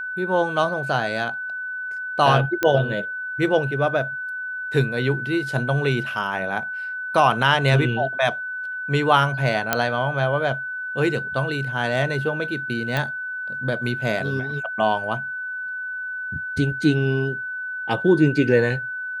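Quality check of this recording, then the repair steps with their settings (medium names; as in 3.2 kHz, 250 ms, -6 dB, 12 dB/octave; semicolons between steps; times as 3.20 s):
whine 1.5 kHz -27 dBFS
2.63 s: pop -7 dBFS
9.73 s: pop -2 dBFS
12.97 s: pop -10 dBFS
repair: de-click; band-stop 1.5 kHz, Q 30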